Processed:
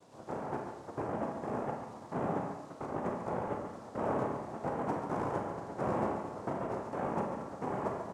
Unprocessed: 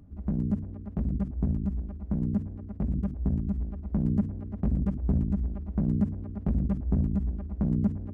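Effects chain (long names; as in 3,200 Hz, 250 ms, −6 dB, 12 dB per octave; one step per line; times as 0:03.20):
Butterworth low-pass 590 Hz
spectral tilt +1.5 dB per octave
bit reduction 10 bits
multi-voice chorus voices 2, 0.48 Hz, delay 14 ms, depth 2 ms
soft clipping −28.5 dBFS, distortion −14 dB
cochlear-implant simulation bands 2
single-tap delay 141 ms −8 dB
four-comb reverb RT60 0.63 s, combs from 28 ms, DRR 3 dB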